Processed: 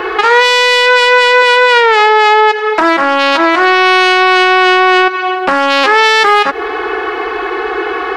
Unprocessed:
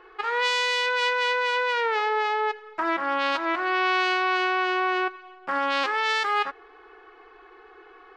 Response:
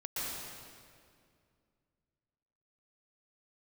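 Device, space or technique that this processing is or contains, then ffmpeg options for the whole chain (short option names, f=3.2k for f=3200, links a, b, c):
mastering chain: -filter_complex "[0:a]asettb=1/sr,asplit=3[a][b][c];[a]atrim=end=1.424[d];[b]atrim=start=1.42:end=2.81,asetpts=PTS-STARTPTS,afade=t=in:d=0.004:c=qsin,afade=t=out:st=1.386:d=0.004:c=qsin,highpass=230[e];[c]atrim=start=2.806[f];[d][e]acrossfade=d=0.004:c1=hsin:c2=qsin[g];[g][f]acrossfade=d=0.004:c1=qsin:c2=hsin,highpass=55,equalizer=f=1.2k:t=o:w=0.77:g=-2.5,acrossover=split=520|5000[h][i][j];[h]acompressor=threshold=-43dB:ratio=4[k];[i]acompressor=threshold=-35dB:ratio=4[l];[j]acompressor=threshold=-51dB:ratio=4[m];[k][l][m]amix=inputs=3:normalize=0,acompressor=threshold=-37dB:ratio=2.5,asoftclip=type=tanh:threshold=-29.5dB,alimiter=level_in=35dB:limit=-1dB:release=50:level=0:latency=1,volume=-1dB"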